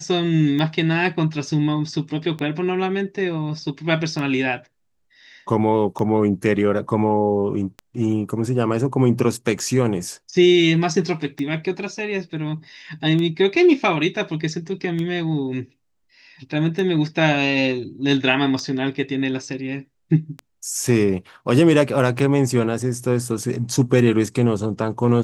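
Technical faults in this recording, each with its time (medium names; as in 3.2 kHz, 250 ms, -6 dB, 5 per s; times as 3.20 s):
tick 33 1/3 rpm -16 dBFS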